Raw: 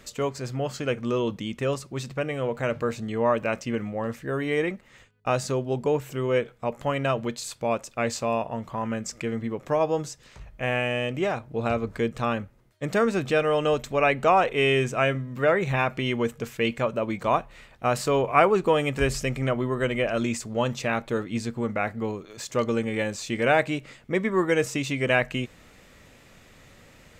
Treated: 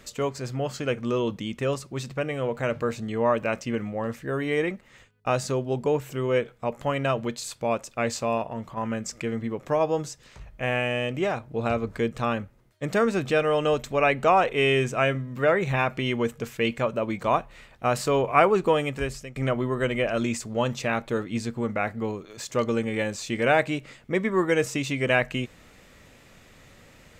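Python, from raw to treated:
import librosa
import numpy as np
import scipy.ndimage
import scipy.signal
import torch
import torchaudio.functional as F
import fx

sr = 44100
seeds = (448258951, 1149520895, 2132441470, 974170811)

y = fx.transient(x, sr, attack_db=-11, sustain_db=-1, at=(8.37, 8.77))
y = fx.edit(y, sr, fx.fade_out_to(start_s=18.7, length_s=0.66, floor_db=-19.0), tone=tone)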